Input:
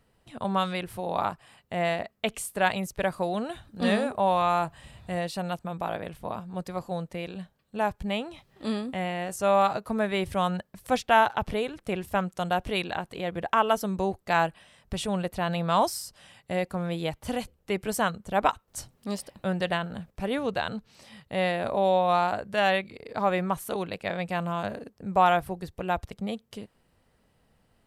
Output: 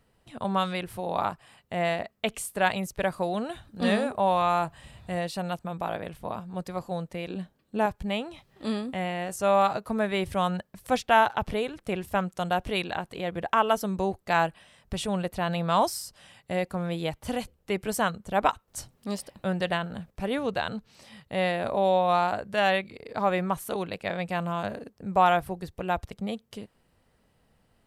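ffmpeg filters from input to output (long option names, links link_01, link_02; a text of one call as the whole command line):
ffmpeg -i in.wav -filter_complex "[0:a]asettb=1/sr,asplit=3[link_01][link_02][link_03];[link_01]atrim=end=7.304[link_04];[link_02]atrim=start=7.3:end=7.86,asetpts=PTS-STARTPTS,afade=type=in:duration=0.004:curve=qsin,afade=type=out:start_time=0.556:duration=0.004:curve=qsin,equalizer=frequency=300:width=1.5:gain=10[link_05];[link_03]atrim=start=7.856[link_06];[link_04][link_05]acrossfade=duration=0.004:curve1=hsin:curve2=qsin[link_07];[link_07][link_06]acrossfade=duration=0.004:curve1=qsin:curve2=hsin" out.wav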